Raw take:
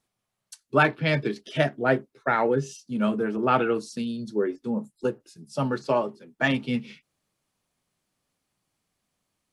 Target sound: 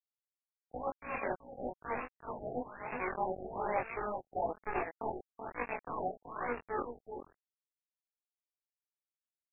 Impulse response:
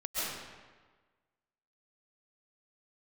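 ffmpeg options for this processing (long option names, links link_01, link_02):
-filter_complex "[0:a]areverse,acompressor=threshold=-38dB:ratio=6,areverse,highpass=260,lowpass=6700,equalizer=frequency=770:width_type=o:width=0.65:gain=-7.5,bandreject=frequency=1600:width=27,asplit=2[link_01][link_02];[link_02]adelay=29,volume=-2dB[link_03];[link_01][link_03]amix=inputs=2:normalize=0,acrusher=bits=5:mix=0:aa=0.000001,asetrate=78577,aresample=44100,atempo=0.561231,flanger=delay=18.5:depth=6.4:speed=1.1,asplit=2[link_04][link_05];[link_05]aecho=0:1:380:0.473[link_06];[link_04][link_06]amix=inputs=2:normalize=0,afftfilt=real='re*lt(b*sr/1024,780*pow(2800/780,0.5+0.5*sin(2*PI*1.1*pts/sr)))':imag='im*lt(b*sr/1024,780*pow(2800/780,0.5+0.5*sin(2*PI*1.1*pts/sr)))':win_size=1024:overlap=0.75,volume=8.5dB"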